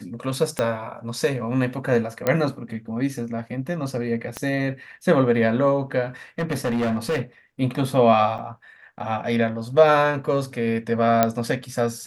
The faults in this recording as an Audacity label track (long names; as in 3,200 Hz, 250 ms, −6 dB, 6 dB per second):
0.590000	0.590000	click −9 dBFS
2.270000	2.270000	click −8 dBFS
4.370000	4.370000	click −13 dBFS
6.390000	7.210000	clipping −19.5 dBFS
8.380000	8.390000	drop-out 7.4 ms
11.230000	11.230000	click −3 dBFS